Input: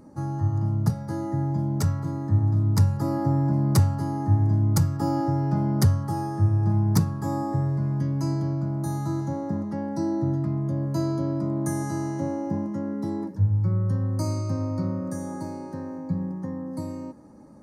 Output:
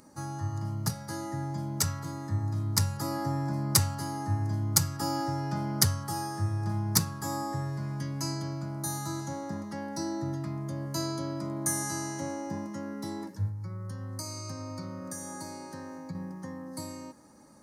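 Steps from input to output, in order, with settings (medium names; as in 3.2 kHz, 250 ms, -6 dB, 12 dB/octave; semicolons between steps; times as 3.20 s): tilt shelf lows -9.5 dB, about 1.2 kHz; 13.48–16.15 s: compression, threshold -35 dBFS, peak gain reduction 8 dB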